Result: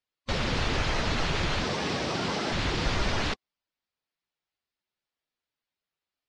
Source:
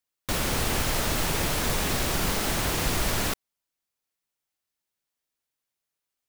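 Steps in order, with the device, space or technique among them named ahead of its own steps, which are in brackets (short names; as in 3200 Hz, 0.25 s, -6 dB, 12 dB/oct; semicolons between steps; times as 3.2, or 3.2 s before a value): 1.64–2.53 HPF 130 Hz 12 dB/oct; clip after many re-uploads (LPF 5200 Hz 24 dB/oct; bin magnitudes rounded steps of 15 dB)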